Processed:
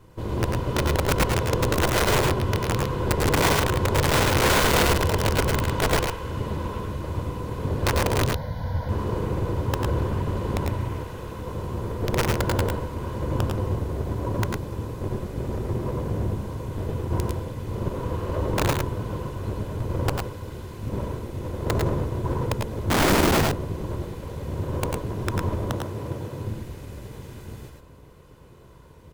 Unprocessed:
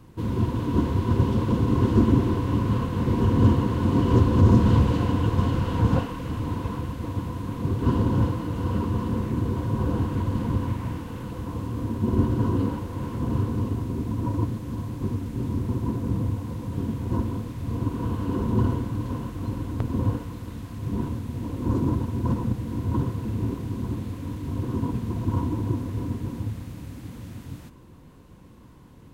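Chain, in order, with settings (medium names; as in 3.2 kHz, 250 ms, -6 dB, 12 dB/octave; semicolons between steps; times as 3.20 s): comb filter that takes the minimum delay 2 ms; 8.24–8.89 s: static phaser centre 1.8 kHz, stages 8; 22.90–23.42 s: resonant low shelf 220 Hz +14 dB, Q 1.5; 25.70–26.45 s: high-pass 100 Hz; integer overflow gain 16 dB; multi-tap echo 94/108 ms -7/-4 dB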